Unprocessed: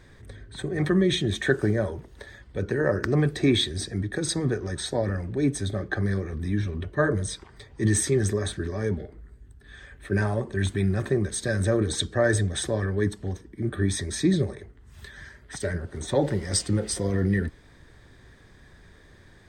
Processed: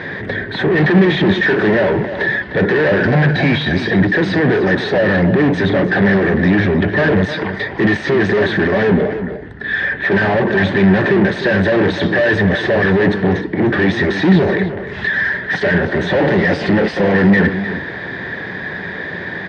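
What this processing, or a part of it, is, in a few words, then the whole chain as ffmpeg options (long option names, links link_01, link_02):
overdrive pedal into a guitar cabinet: -filter_complex "[0:a]asettb=1/sr,asplit=3[link_01][link_02][link_03];[link_01]atrim=end=3.004[link_04];[link_02]atrim=start=3:end=3.74,asetpts=PTS-STARTPTS,afade=type=in:duration=0.004:curve=qsin,afade=type=out:start_time=0.736:duration=0.004:curve=qsin,aecho=1:1:1.3:0.81,atrim=end_sample=32634[link_05];[link_03]atrim=start=3.736[link_06];[link_04][link_05]acrossfade=duration=0.004:curve1=hsin:curve2=qsin[link_07];[link_07][link_06]acrossfade=duration=0.004:curve1=qsin:curve2=hsin,asplit=2[link_08][link_09];[link_09]highpass=frequency=720:poles=1,volume=41dB,asoftclip=type=tanh:threshold=-6dB[link_10];[link_08][link_10]amix=inputs=2:normalize=0,lowpass=frequency=1100:poles=1,volume=-6dB,highpass=86,equalizer=frequency=180:width_type=q:width=4:gain=8,equalizer=frequency=1200:width_type=q:width=4:gain=-7,equalizer=frequency=1800:width_type=q:width=4:gain=7,lowpass=frequency=4400:width=0.5412,lowpass=frequency=4400:width=1.3066,asplit=2[link_11][link_12];[link_12]adelay=303.2,volume=-10dB,highshelf=frequency=4000:gain=-6.82[link_13];[link_11][link_13]amix=inputs=2:normalize=0"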